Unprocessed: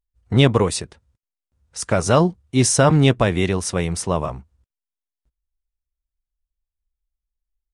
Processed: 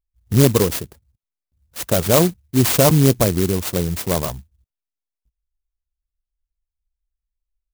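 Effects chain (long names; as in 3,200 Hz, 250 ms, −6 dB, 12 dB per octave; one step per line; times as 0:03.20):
spectral envelope exaggerated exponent 1.5
converter with an unsteady clock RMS 0.14 ms
level +1 dB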